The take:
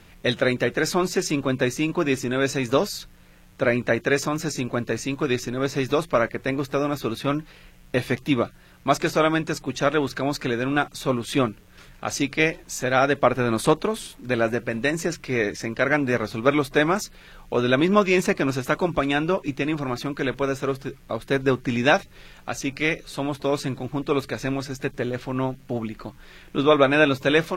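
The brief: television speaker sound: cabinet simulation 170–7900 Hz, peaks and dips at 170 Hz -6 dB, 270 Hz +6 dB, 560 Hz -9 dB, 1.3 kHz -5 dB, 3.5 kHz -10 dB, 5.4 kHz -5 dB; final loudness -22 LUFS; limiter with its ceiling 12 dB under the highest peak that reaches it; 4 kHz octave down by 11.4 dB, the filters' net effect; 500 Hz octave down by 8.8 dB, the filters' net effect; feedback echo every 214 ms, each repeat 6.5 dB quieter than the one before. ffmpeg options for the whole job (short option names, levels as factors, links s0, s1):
-af "equalizer=f=500:t=o:g=-8,equalizer=f=4000:t=o:g=-6.5,alimiter=limit=0.112:level=0:latency=1,highpass=f=170:w=0.5412,highpass=f=170:w=1.3066,equalizer=f=170:t=q:w=4:g=-6,equalizer=f=270:t=q:w=4:g=6,equalizer=f=560:t=q:w=4:g=-9,equalizer=f=1300:t=q:w=4:g=-5,equalizer=f=3500:t=q:w=4:g=-10,equalizer=f=5400:t=q:w=4:g=-5,lowpass=f=7900:w=0.5412,lowpass=f=7900:w=1.3066,aecho=1:1:214|428|642|856|1070|1284:0.473|0.222|0.105|0.0491|0.0231|0.0109,volume=2.37"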